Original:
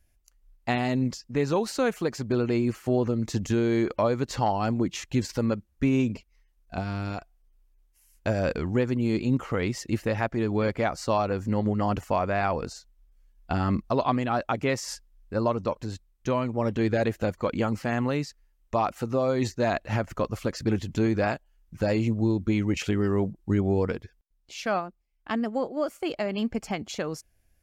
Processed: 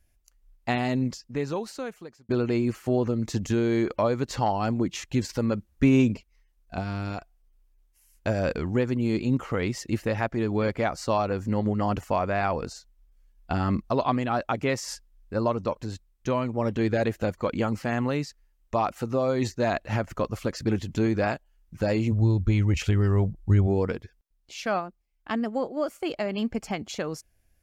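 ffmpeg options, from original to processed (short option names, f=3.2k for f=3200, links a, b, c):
-filter_complex "[0:a]asplit=3[a][b][c];[a]afade=t=out:st=22.11:d=0.02[d];[b]asubboost=boost=6:cutoff=95,afade=t=in:st=22.11:d=0.02,afade=t=out:st=23.66:d=0.02[e];[c]afade=t=in:st=23.66:d=0.02[f];[d][e][f]amix=inputs=3:normalize=0,asplit=4[g][h][i][j];[g]atrim=end=2.29,asetpts=PTS-STARTPTS,afade=t=out:st=0.96:d=1.33[k];[h]atrim=start=2.29:end=5.542,asetpts=PTS-STARTPTS,afade=t=in:d=0.004:c=hsin[l];[i]atrim=start=5.538:end=6.142,asetpts=PTS-STARTPTS,volume=4dB[m];[j]atrim=start=6.138[n];[k][l]concat=n=2:v=0:a=1[o];[o][m]acrossfade=d=0.004:c1=hsin:c2=hsin[p];[p][n]acrossfade=d=0.004:c1=hsin:c2=hsin"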